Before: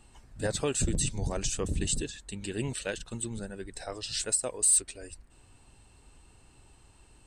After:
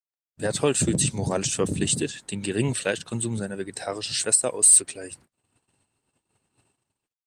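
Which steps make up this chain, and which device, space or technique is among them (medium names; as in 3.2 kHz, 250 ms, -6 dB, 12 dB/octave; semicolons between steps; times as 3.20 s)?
2.15–3.81 s: dynamic bell 110 Hz, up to +5 dB, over -54 dBFS, Q 6.4; video call (high-pass 110 Hz 24 dB/octave; level rider gain up to 10 dB; gate -48 dBFS, range -49 dB; trim -1 dB; Opus 32 kbps 48 kHz)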